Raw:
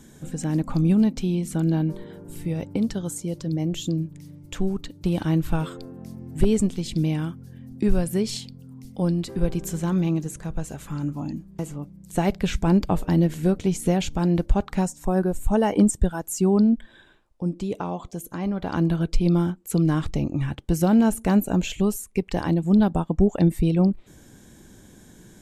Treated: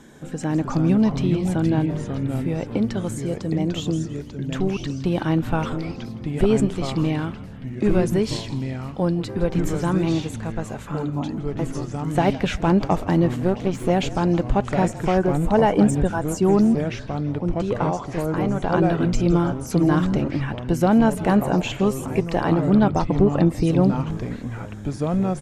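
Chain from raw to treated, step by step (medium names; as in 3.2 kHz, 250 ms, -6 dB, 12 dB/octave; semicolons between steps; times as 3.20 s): 13.36–13.90 s: partial rectifier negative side -12 dB; overdrive pedal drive 12 dB, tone 1.5 kHz, clips at -7 dBFS; ever faster or slower copies 247 ms, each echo -3 st, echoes 3, each echo -6 dB; frequency-shifting echo 164 ms, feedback 51%, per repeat -47 Hz, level -17 dB; trim +2.5 dB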